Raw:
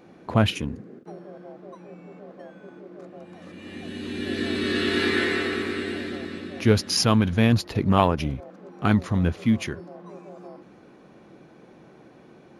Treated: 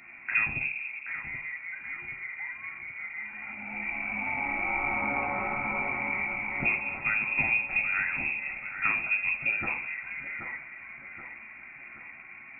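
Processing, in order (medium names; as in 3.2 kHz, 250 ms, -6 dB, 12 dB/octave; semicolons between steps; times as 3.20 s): dynamic bell 2 kHz, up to +4 dB, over -39 dBFS, Q 2; compression 6:1, threshold -30 dBFS, peak gain reduction 17 dB; two-band feedback delay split 390 Hz, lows 200 ms, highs 778 ms, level -9 dB; reverberation RT60 0.45 s, pre-delay 9 ms, DRR 2.5 dB; frequency inversion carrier 2.6 kHz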